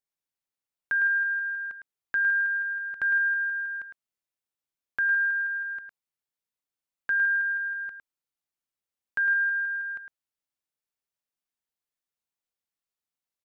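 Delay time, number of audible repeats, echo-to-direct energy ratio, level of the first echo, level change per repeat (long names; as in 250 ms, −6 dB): 107 ms, 1, −7.0 dB, −7.0 dB, repeats not evenly spaced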